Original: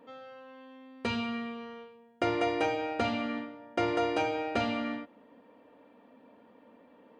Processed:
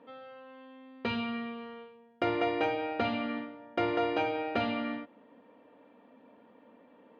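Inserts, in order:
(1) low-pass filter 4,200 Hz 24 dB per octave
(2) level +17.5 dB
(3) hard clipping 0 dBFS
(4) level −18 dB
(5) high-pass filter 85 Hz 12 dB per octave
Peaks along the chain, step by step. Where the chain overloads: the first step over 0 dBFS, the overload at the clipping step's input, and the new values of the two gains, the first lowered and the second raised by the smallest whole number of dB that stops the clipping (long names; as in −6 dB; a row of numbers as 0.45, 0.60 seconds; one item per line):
−14.0, +3.5, 0.0, −18.0, −17.0 dBFS
step 2, 3.5 dB
step 2 +13.5 dB, step 4 −14 dB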